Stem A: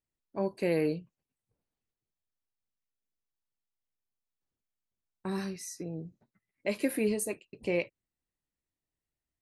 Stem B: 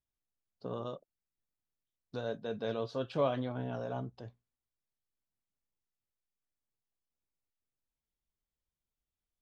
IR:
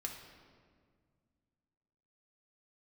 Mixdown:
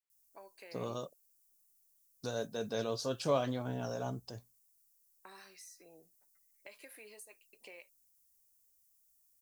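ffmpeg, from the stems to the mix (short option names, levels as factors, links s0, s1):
-filter_complex "[0:a]highpass=810,acompressor=threshold=0.00398:ratio=5,volume=0.631[s0];[1:a]highshelf=f=4700:g=9.5,aexciter=amount=5.6:drive=4.9:freq=5000,adelay=100,volume=0.944[s1];[s0][s1]amix=inputs=2:normalize=0"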